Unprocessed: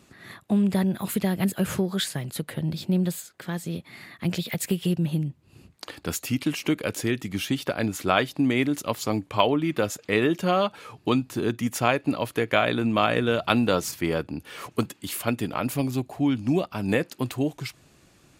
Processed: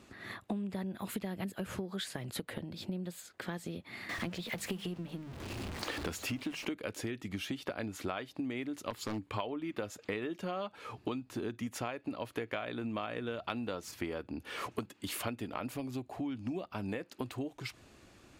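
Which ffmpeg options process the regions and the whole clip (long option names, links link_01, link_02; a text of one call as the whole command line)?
ffmpeg -i in.wav -filter_complex "[0:a]asettb=1/sr,asplit=3[link_01][link_02][link_03];[link_01]atrim=end=4.094[link_04];[link_02]atrim=start=4.09:end=6.65,asetpts=PTS-STARTPTS,afade=type=in:duration=0.004:curve=qsin,afade=type=out:start_time=2.556:duration=0.004:curve=qsin,aeval=exprs='val(0)+0.5*0.0211*sgn(val(0))':channel_layout=same,highshelf=frequency=9600:gain=-4,bandreject=frequency=50:width_type=h:width=6,bandreject=frequency=100:width_type=h:width=6,bandreject=frequency=150:width_type=h:width=6,bandreject=frequency=200:width_type=h:width=6[link_05];[link_03]atrim=start=6.646[link_06];[link_04][link_05]acrossfade=duration=0.004:curve1=hsin:curve2=qsin[link_07];[link_07][link_06]acrossfade=duration=0.004:curve1=qsin:curve2=hsin,asettb=1/sr,asplit=3[link_08][link_09][link_10];[link_08]atrim=end=8.904[link_11];[link_09]atrim=start=8.9:end=9.36,asetpts=PTS-STARTPTS,afade=type=in:duration=0.004:curve=qsin,afade=type=out:start_time=0.456:duration=0.004:curve=qsin,equalizer=frequency=640:width_type=o:width=0.54:gain=-7.5,bandreject=frequency=5900:width=12,aeval=exprs='0.1*(abs(mod(val(0)/0.1+3,4)-2)-1)':channel_layout=same[link_12];[link_10]atrim=start=9.356[link_13];[link_11][link_12]acrossfade=duration=0.004:curve1=hsin:curve2=qsin[link_14];[link_14][link_13]acrossfade=duration=0.004:curve1=qsin:curve2=hsin,highshelf=frequency=6300:gain=-9,acompressor=threshold=-33dB:ratio=16,equalizer=frequency=150:width=5.5:gain=-13.5" out.wav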